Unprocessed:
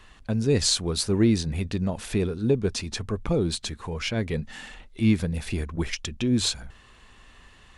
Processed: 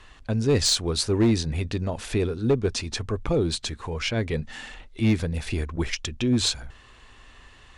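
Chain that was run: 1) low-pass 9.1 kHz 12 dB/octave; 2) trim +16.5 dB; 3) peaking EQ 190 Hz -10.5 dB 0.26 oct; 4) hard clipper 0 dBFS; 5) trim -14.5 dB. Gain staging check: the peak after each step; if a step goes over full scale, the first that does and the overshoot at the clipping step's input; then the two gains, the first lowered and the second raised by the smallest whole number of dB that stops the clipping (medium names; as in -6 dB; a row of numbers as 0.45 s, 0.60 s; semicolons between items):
-10.0 dBFS, +6.5 dBFS, +5.5 dBFS, 0.0 dBFS, -14.5 dBFS; step 2, 5.5 dB; step 2 +10.5 dB, step 5 -8.5 dB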